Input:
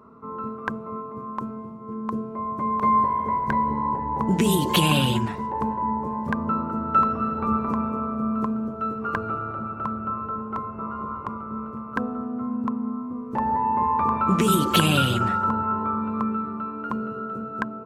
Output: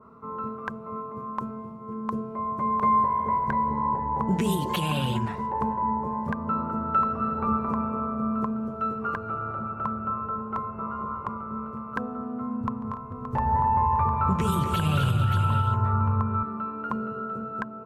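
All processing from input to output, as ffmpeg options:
-filter_complex "[0:a]asettb=1/sr,asplit=3[a][b][c];[a]atrim=end=12.614[d];[b]atrim=start=12.61:end=16.43,asetpts=PTS-STARTPTS,afade=t=in:d=0.004:c=qsin,afade=t=out:st=3.816:d=0.004:c=qsin,lowshelf=f=150:t=q:w=1.5:g=11,aecho=1:1:144|237|258|290|443|573:0.141|0.422|0.251|0.188|0.112|0.376,atrim=end_sample=168462[e];[c]atrim=start=16.426[f];[d][e]acrossfade=d=0.004:c1=hsin:c2=qsin[g];[g][f]acrossfade=d=0.004:c1=qsin:c2=hsin,equalizer=f=300:t=o:w=0.65:g=-6.5,alimiter=limit=-14dB:level=0:latency=1:release=326,adynamicequalizer=threshold=0.01:dfrequency=2300:dqfactor=0.7:tfrequency=2300:tqfactor=0.7:attack=5:release=100:ratio=0.375:range=3.5:mode=cutabove:tftype=highshelf"

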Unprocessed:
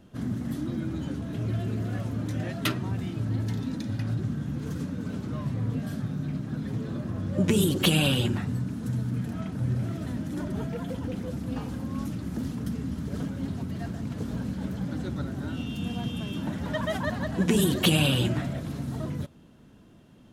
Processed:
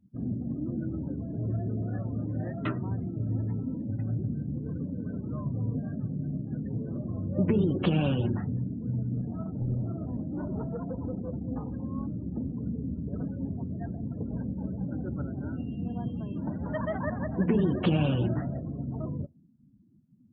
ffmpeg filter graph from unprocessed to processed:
-filter_complex "[0:a]asettb=1/sr,asplit=3[a][b][c];[a]atrim=end=9.174[d];[b]atrim=start=9.17:end=11.48,asetpts=PTS-STARTPTS,afade=t=in:d=0.004:c=qsin,afade=t=out:st=2.306:d=0.004:c=qsin,adynamicsmooth=sensitivity=5:basefreq=510,equalizer=f=1.6k:t=o:w=2.3:g=4.5,aeval=exprs='clip(val(0),-1,0.0447)':c=same[e];[c]atrim=start=11.476[f];[d][e]acrossfade=d=0.004:c1=hsin:c2=qsin[g];[g][f]acrossfade=d=0.004:c1=qsin:c2=hsin,lowpass=1.6k,afftdn=nr=33:nf=-41,volume=-1.5dB"

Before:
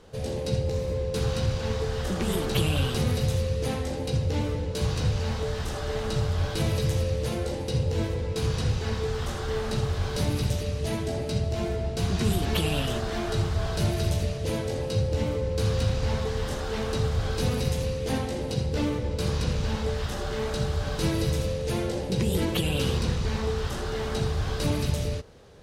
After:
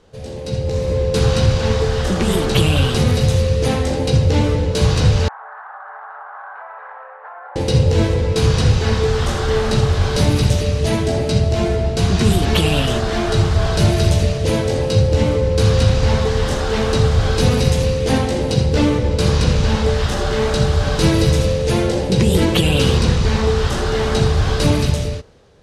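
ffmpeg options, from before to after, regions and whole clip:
-filter_complex "[0:a]asettb=1/sr,asplit=3[a][b][c];[a]atrim=end=5.284[d];[b]atrim=start=5.28:end=7.56,asetpts=PTS-STARTPTS,afade=t=in:d=0.004:c=qsin,afade=t=out:st=2.276:d=0.004:c=qsin,asuperpass=centerf=1100:order=8:qfactor=1.2,acompressor=threshold=-43dB:ratio=6:attack=3.2:release=140:knee=1:detection=peak[e];[c]atrim=start=7.556[f];[d][e]acrossfade=d=0.004:c1=hsin:c2=qsin[g];[g][f]acrossfade=d=0.004:c1=qsin:c2=hsin,dynaudnorm=f=110:g=13:m=13dB,lowpass=10k"

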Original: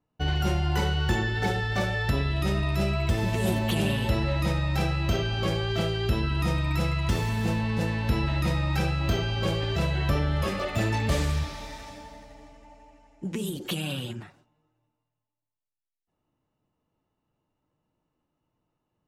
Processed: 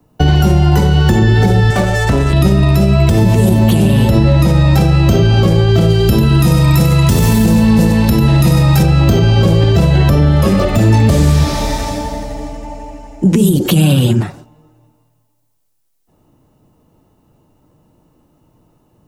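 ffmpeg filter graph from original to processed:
-filter_complex "[0:a]asettb=1/sr,asplit=3[a][b][c];[a]atrim=end=1.704[d];[b]atrim=start=1.7:end=2.33,asetpts=PTS-STARTPTS,afade=t=in:d=0.004:c=qsin,afade=t=out:st=0.626:d=0.004:c=qsin,lowpass=10k,equalizer=f=100:w=0.35:g=-11,adynamicsmooth=sensitivity=6:basefreq=680[e];[c]atrim=start=2.326[f];[d][e]acrossfade=d=0.004:c1=hsin:c2=qsin[g];[g][f]acrossfade=d=0.004:c1=qsin:c2=hsin,asettb=1/sr,asplit=3[h][i][j];[h]atrim=end=5.904[k];[i]atrim=start=5.9:end=8.83,asetpts=PTS-STARTPTS,afade=t=in:d=0.004:c=qsin,afade=t=out:st=2.926:d=0.004:c=qsin,highshelf=f=6.1k:g=10,aecho=1:1:95:0.473,atrim=end_sample=129213[l];[j]atrim=start=8.826[m];[k][l]acrossfade=d=0.004:c1=hsin:c2=qsin[n];[n][m]acrossfade=d=0.004:c1=qsin:c2=hsin,equalizer=f=2.2k:w=0.49:g=-9,acrossover=split=120|240[o][p][q];[o]acompressor=threshold=-40dB:ratio=4[r];[p]acompressor=threshold=-34dB:ratio=4[s];[q]acompressor=threshold=-41dB:ratio=4[t];[r][s][t]amix=inputs=3:normalize=0,alimiter=level_in=27dB:limit=-1dB:release=50:level=0:latency=1,volume=-1dB"

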